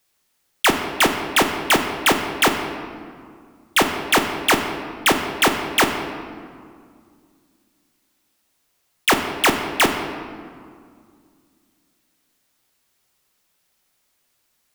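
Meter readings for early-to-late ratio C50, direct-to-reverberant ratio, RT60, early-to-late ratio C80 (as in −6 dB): 6.5 dB, 4.0 dB, 2.1 s, 7.5 dB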